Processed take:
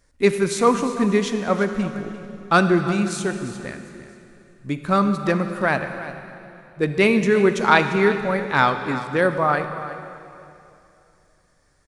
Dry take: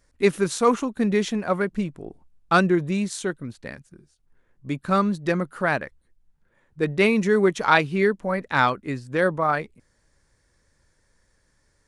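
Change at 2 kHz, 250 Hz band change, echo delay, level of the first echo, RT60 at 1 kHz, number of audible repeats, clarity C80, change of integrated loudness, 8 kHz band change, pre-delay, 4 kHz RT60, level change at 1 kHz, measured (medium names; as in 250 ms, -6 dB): +2.5 dB, +2.5 dB, 347 ms, -14.5 dB, 2.8 s, 1, 8.5 dB, +2.5 dB, +2.5 dB, 23 ms, 2.7 s, +3.0 dB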